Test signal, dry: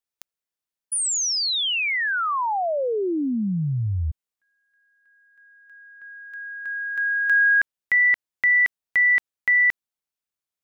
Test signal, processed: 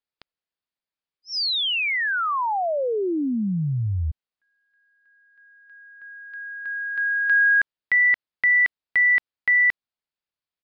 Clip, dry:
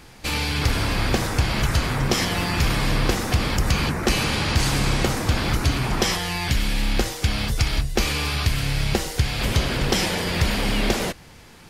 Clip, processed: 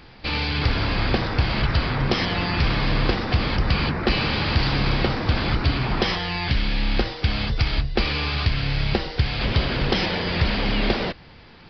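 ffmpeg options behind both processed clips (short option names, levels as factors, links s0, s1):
-af "aresample=11025,aresample=44100"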